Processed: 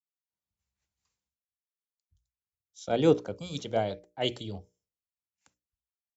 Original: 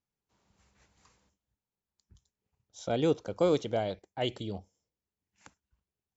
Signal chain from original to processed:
gain on a spectral selection 0:03.36–0:03.58, 300–2,300 Hz −19 dB
mains-hum notches 60/120/180/240/300/360/420/480/540/600 Hz
multiband upward and downward expander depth 70%

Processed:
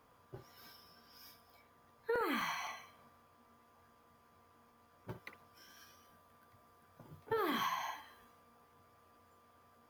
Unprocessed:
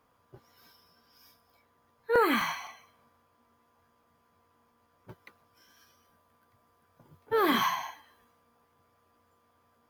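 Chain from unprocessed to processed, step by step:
downward compressor 5 to 1, threshold −37 dBFS, peak gain reduction 15 dB
on a send: convolution reverb, pre-delay 52 ms, DRR 10.5 dB
on the sum: level +2 dB

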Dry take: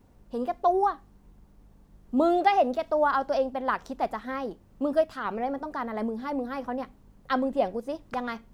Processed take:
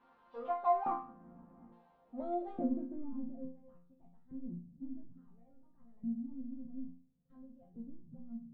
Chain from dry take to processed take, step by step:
noise reduction from a noise print of the clip's start 12 dB
auto-filter band-pass square 0.58 Hz 240–3,700 Hz
power curve on the samples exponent 0.5
low-pass filter sweep 1,100 Hz → 140 Hz, 0:01.62–0:03.53
resonators tuned to a chord F3 sus4, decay 0.45 s
level +13.5 dB

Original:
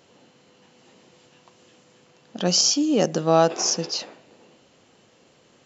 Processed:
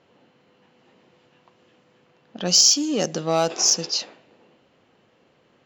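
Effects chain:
in parallel at −4.5 dB: hard clipping −22.5 dBFS, distortion −5 dB
on the sum: harmonic generator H 5 −30 dB, 7 −28 dB, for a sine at −4 dBFS
high-shelf EQ 3,200 Hz +11 dB
low-pass that shuts in the quiet parts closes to 2,000 Hz, open at −9 dBFS
level −6 dB

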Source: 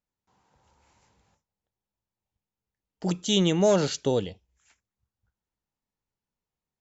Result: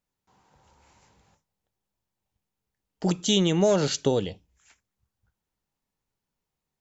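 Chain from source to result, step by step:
downward compressor 3 to 1, threshold −24 dBFS, peak gain reduction 5.5 dB
on a send: convolution reverb RT60 0.20 s, pre-delay 3 ms, DRR 19.5 dB
on the sum: level +4.5 dB

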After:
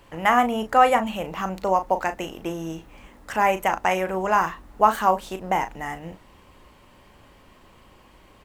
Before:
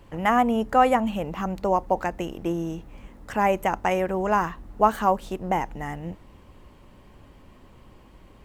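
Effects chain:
low-shelf EQ 490 Hz −10 dB
double-tracking delay 37 ms −9.5 dB
level +4.5 dB

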